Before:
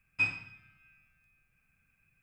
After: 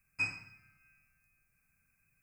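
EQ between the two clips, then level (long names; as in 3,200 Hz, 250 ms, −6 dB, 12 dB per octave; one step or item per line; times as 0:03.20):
Butterworth band-reject 3,400 Hz, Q 1.5
high-shelf EQ 4,200 Hz +11 dB
−4.0 dB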